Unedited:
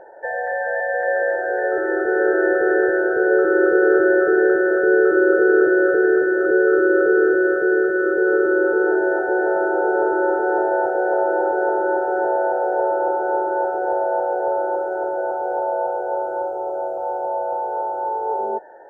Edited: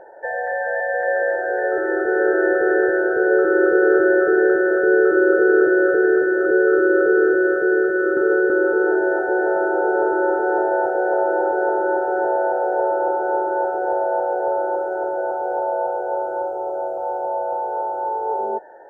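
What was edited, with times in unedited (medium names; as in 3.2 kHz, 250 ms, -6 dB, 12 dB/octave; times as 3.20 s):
8.17–8.50 s: reverse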